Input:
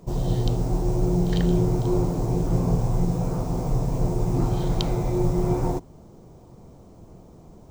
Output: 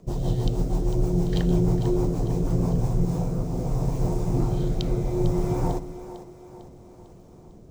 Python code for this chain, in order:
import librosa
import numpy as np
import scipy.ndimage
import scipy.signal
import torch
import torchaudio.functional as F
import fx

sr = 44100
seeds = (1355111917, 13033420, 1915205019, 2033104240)

y = fx.rotary_switch(x, sr, hz=6.3, then_hz=0.65, switch_at_s=2.53)
y = fx.echo_split(y, sr, split_hz=330.0, low_ms=127, high_ms=450, feedback_pct=52, wet_db=-12.5)